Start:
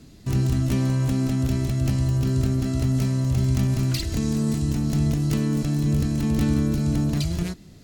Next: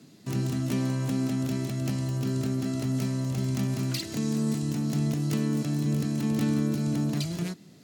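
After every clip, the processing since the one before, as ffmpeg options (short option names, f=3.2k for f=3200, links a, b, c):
-af "highpass=f=140:w=0.5412,highpass=f=140:w=1.3066,volume=-3dB"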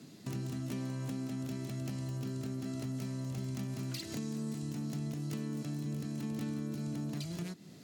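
-af "acompressor=threshold=-39dB:ratio=3"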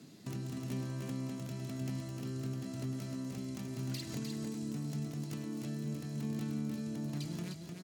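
-af "aecho=1:1:304:0.562,volume=-2dB"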